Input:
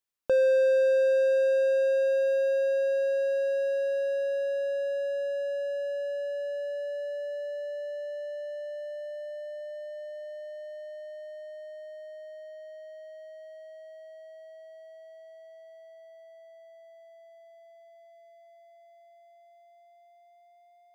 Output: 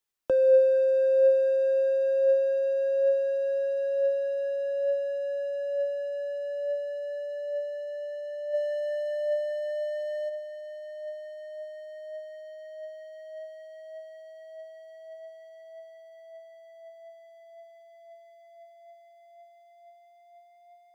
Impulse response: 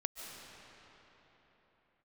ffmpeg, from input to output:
-filter_complex "[0:a]acrossover=split=260|760[link_01][link_02][link_03];[link_03]acompressor=threshold=-49dB:ratio=6[link_04];[link_01][link_02][link_04]amix=inputs=3:normalize=0,flanger=delay=2.2:depth=2.6:regen=65:speed=0.56:shape=triangular,asplit=3[link_05][link_06][link_07];[link_05]afade=type=out:start_time=8.53:duration=0.02[link_08];[link_06]acontrast=79,afade=type=in:start_time=8.53:duration=0.02,afade=type=out:start_time=10.28:duration=0.02[link_09];[link_07]afade=type=in:start_time=10.28:duration=0.02[link_10];[link_08][link_09][link_10]amix=inputs=3:normalize=0,volume=7dB"

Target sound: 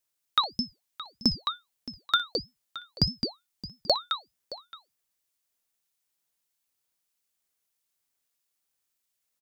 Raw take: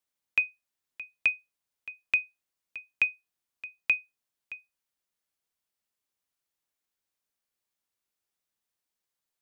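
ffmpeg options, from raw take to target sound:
ffmpeg -i in.wav -af "highshelf=frequency=2400:gain=11.5,aecho=1:1:60|214:0.141|0.473,aeval=exprs='val(0)*sin(2*PI*1900*n/s+1900*0.45/1.6*sin(2*PI*1.6*n/s))':channel_layout=same,volume=-1.5dB" out.wav

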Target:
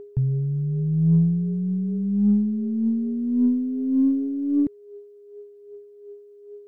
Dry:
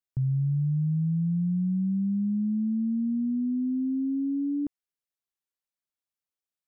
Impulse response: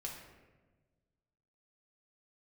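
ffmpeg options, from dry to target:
-af "aeval=exprs='val(0)+0.00501*sin(2*PI*410*n/s)':channel_layout=same,aphaser=in_gain=1:out_gain=1:delay=3.9:decay=0.49:speed=0.87:type=triangular,aeval=exprs='0.158*(cos(1*acos(clip(val(0)/0.158,-1,1)))-cos(1*PI/2))+0.00316*(cos(2*acos(clip(val(0)/0.158,-1,1)))-cos(2*PI/2))+0.00112*(cos(3*acos(clip(val(0)/0.158,-1,1)))-cos(3*PI/2))+0.001*(cos(6*acos(clip(val(0)/0.158,-1,1)))-cos(6*PI/2))':channel_layout=same,volume=4.5dB"

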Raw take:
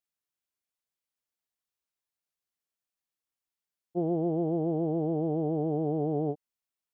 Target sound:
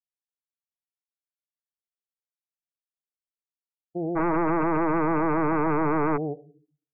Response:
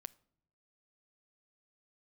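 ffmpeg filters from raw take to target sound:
-filter_complex "[0:a]dynaudnorm=framelen=360:gausssize=5:maxgain=7.5dB[link_01];[1:a]atrim=start_sample=2205,asetrate=34398,aresample=44100[link_02];[link_01][link_02]afir=irnorm=-1:irlink=0,alimiter=limit=-21dB:level=0:latency=1:release=11,lowpass=frequency=1100:width=0.5412,lowpass=frequency=1100:width=1.3066,asplit=3[link_03][link_04][link_05];[link_03]afade=type=out:start_time=4.15:duration=0.02[link_06];[link_04]aeval=exprs='0.0944*sin(PI/2*2.82*val(0)/0.0944)':channel_layout=same,afade=type=in:start_time=4.15:duration=0.02,afade=type=out:start_time=6.16:duration=0.02[link_07];[link_05]afade=type=in:start_time=6.16:duration=0.02[link_08];[link_06][link_07][link_08]amix=inputs=3:normalize=0,afftdn=noise_reduction=27:noise_floor=-47"

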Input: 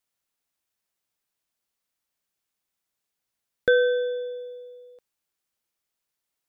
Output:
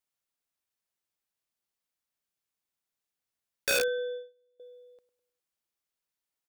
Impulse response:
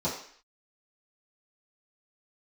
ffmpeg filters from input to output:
-filter_complex "[0:a]asplit=2[link_01][link_02];[link_02]adelay=102,lowpass=frequency=2100:poles=1,volume=-15.5dB,asplit=2[link_03][link_04];[link_04]adelay=102,lowpass=frequency=2100:poles=1,volume=0.49,asplit=2[link_05][link_06];[link_06]adelay=102,lowpass=frequency=2100:poles=1,volume=0.49,asplit=2[link_07][link_08];[link_08]adelay=102,lowpass=frequency=2100:poles=1,volume=0.49[link_09];[link_01][link_03][link_05][link_07][link_09]amix=inputs=5:normalize=0,asettb=1/sr,asplit=3[link_10][link_11][link_12];[link_10]atrim=end=3.804[link_13];[link_11]atrim=start=3.8:end=4.6,asetpts=PTS-STARTPTS,afade=type=in:duration=0.004:curve=qsin,afade=type=out:start_time=0.796:duration=0.004:curve=qsin,agate=range=-27dB:threshold=-31dB:ratio=16:detection=peak[link_14];[link_12]atrim=start=4.596[link_15];[link_13][link_14]acrossfade=duration=0.004:curve1=hsin:curve2=qsin[link_16];[link_16][link_15]acrossfade=duration=0.004:curve1=qsin:curve2=hsin,aeval=exprs='(mod(5.62*val(0)+1,2)-1)/5.62':channel_layout=same,volume=-6dB"

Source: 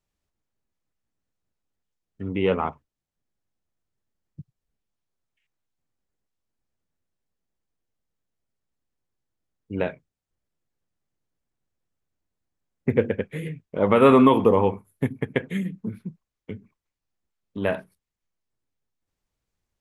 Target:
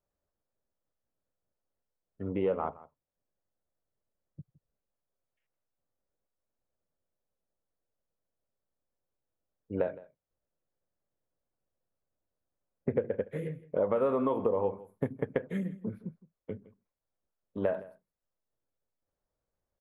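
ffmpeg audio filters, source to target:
ffmpeg -i in.wav -filter_complex "[0:a]equalizer=frequency=560:width_type=o:width=0.78:gain=10.5,acompressor=threshold=-19dB:ratio=8,highshelf=frequency=1900:width_type=q:width=1.5:gain=-6,asplit=2[link_01][link_02];[link_02]aecho=0:1:164:0.106[link_03];[link_01][link_03]amix=inputs=2:normalize=0,volume=-6.5dB" out.wav

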